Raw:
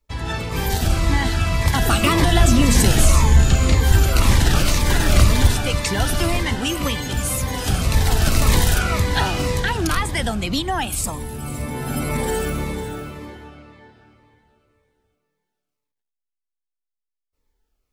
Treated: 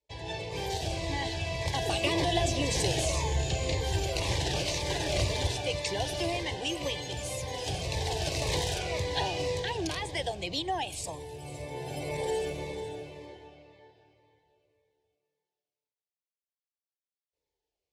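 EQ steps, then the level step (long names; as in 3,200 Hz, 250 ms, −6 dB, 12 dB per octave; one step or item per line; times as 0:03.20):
band-pass filter 130–5,600 Hz
phaser with its sweep stopped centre 550 Hz, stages 4
−5.0 dB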